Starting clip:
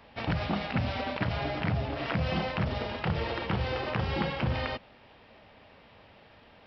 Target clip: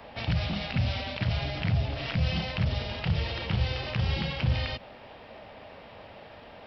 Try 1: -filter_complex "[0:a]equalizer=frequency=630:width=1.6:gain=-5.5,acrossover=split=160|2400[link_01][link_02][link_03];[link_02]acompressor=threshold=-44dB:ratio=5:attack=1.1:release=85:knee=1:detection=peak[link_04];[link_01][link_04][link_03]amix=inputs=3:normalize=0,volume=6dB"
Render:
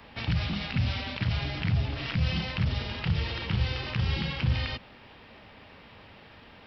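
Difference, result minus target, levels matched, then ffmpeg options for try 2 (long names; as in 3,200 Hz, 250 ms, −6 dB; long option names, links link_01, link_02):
500 Hz band −4.5 dB
-filter_complex "[0:a]equalizer=frequency=630:width=1.6:gain=5.5,acrossover=split=160|2400[link_01][link_02][link_03];[link_02]acompressor=threshold=-44dB:ratio=5:attack=1.1:release=85:knee=1:detection=peak[link_04];[link_01][link_04][link_03]amix=inputs=3:normalize=0,volume=6dB"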